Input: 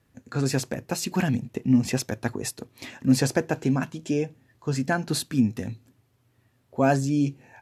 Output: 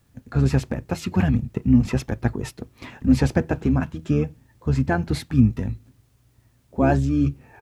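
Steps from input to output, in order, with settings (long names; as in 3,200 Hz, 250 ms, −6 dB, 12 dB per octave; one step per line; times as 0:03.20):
bass and treble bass +6 dB, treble −10 dB
bit-depth reduction 12 bits, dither triangular
pitch-shifted copies added −12 semitones −5 dB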